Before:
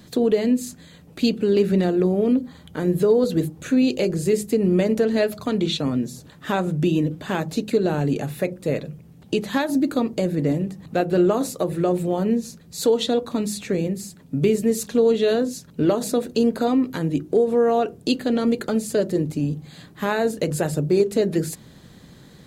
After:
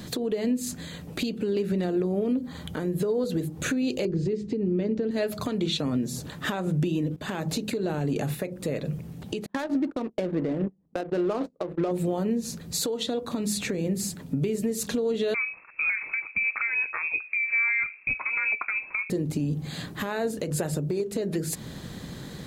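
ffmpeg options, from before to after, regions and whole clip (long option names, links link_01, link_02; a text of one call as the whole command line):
ffmpeg -i in.wav -filter_complex "[0:a]asettb=1/sr,asplit=3[link_01][link_02][link_03];[link_01]atrim=end=4.054[link_04];[link_02]atrim=start=4.05:end=5.11,asetpts=PTS-STARTPTS,afade=type=in:duration=0.004:curve=qsin,afade=type=out:start_time=1.056:duration=0.004:curve=qsin,lowpass=frequency=5200:width=0.5412,lowpass=frequency=5200:width=1.3066,lowshelf=frequency=500:width_type=q:width=1.5:gain=7[link_05];[link_03]atrim=start=5.106[link_06];[link_04][link_05]acrossfade=duration=0.004:curve1=hsin:curve2=qsin[link_07];[link_07][link_06]acrossfade=duration=0.004:curve1=qsin:curve2=hsin,asettb=1/sr,asplit=3[link_08][link_09][link_10];[link_08]atrim=end=7.164[link_11];[link_09]atrim=start=7.16:end=8.42,asetpts=PTS-STARTPTS,afade=type=in:duration=0.004:curve=qsin,afade=type=out:start_time=1.256:duration=0.004:curve=qsin,agate=range=-33dB:threshold=-32dB:ratio=3:release=100:detection=peak,acompressor=threshold=-30dB:ratio=3:attack=3.2:release=140:knee=1:detection=peak[link_12];[link_10]atrim=start=8.416[link_13];[link_11][link_12]acrossfade=duration=0.004:curve1=hsin:curve2=qsin[link_14];[link_14][link_13]acrossfade=duration=0.004:curve1=qsin:curve2=hsin,asettb=1/sr,asplit=3[link_15][link_16][link_17];[link_15]atrim=end=9.464[link_18];[link_16]atrim=start=9.46:end=11.91,asetpts=PTS-STARTPTS,afade=type=in:duration=0.004:curve=qsin,afade=type=out:start_time=2.446:duration=0.004:curve=qsin,agate=range=-28dB:threshold=-28dB:ratio=16:release=100:detection=peak,equalizer=frequency=110:width=1.1:gain=-13,adynamicsmooth=sensitivity=3.5:basefreq=570[link_19];[link_17]atrim=start=11.906[link_20];[link_18][link_19]acrossfade=duration=0.004:curve1=hsin:curve2=qsin[link_21];[link_21][link_20]acrossfade=duration=0.004:curve1=qsin:curve2=hsin,asettb=1/sr,asplit=3[link_22][link_23][link_24];[link_22]atrim=end=15.344[link_25];[link_23]atrim=start=15.34:end=19.1,asetpts=PTS-STARTPTS,afade=type=in:duration=0.004:curve=qsin,afade=type=out:start_time=3.756:duration=0.004:curve=qsin,highpass=460,lowpass=frequency=2400:width_type=q:width=0.5098,lowpass=frequency=2400:width_type=q:width=0.6013,lowpass=frequency=2400:width_type=q:width=0.9,lowpass=frequency=2400:width_type=q:width=2.563,afreqshift=-2800[link_26];[link_24]atrim=start=19.096[link_27];[link_25][link_26]acrossfade=duration=0.004:curve1=hsin:curve2=qsin[link_28];[link_28][link_27]acrossfade=duration=0.004:curve1=qsin:curve2=hsin,acompressor=threshold=-26dB:ratio=12,alimiter=level_in=1.5dB:limit=-24dB:level=0:latency=1:release=329,volume=-1.5dB,volume=7.5dB" out.wav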